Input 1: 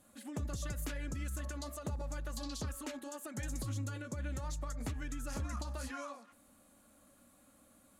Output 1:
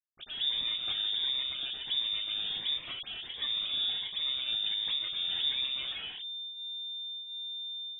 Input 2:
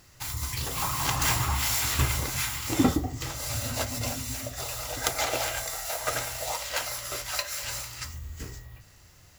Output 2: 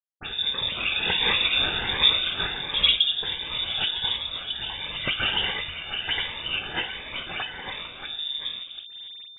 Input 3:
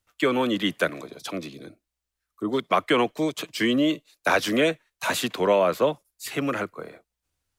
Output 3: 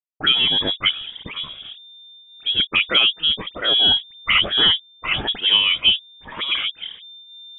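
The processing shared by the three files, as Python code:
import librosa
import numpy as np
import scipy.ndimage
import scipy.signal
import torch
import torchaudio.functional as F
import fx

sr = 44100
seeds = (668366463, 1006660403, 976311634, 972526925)

y = fx.delta_hold(x, sr, step_db=-41.5)
y = fx.dispersion(y, sr, late='lows', ms=45.0, hz=1400.0)
y = fx.freq_invert(y, sr, carrier_hz=3600)
y = fx.notch_cascade(y, sr, direction='rising', hz=1.4)
y = F.gain(torch.from_numpy(y), 6.0).numpy()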